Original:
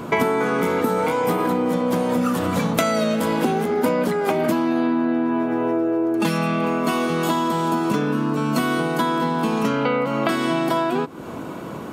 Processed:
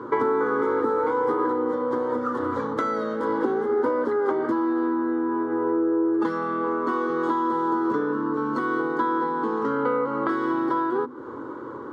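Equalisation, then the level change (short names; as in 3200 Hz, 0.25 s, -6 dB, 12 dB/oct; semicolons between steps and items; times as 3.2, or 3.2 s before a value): BPF 120–2000 Hz; notches 50/100/150/200/250 Hz; fixed phaser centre 680 Hz, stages 6; 0.0 dB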